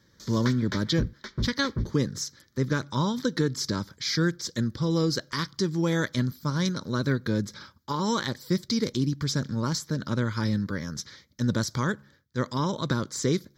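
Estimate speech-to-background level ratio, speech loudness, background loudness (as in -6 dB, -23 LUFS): 7.0 dB, -28.5 LUFS, -35.5 LUFS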